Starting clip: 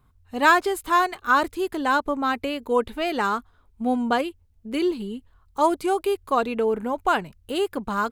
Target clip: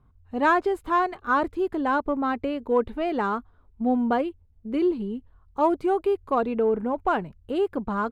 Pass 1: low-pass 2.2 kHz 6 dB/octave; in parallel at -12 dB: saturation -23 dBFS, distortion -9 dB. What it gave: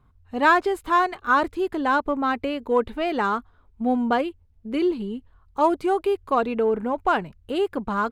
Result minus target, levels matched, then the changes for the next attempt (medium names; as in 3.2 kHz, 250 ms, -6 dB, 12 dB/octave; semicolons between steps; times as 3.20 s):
2 kHz band +3.0 dB
change: low-pass 810 Hz 6 dB/octave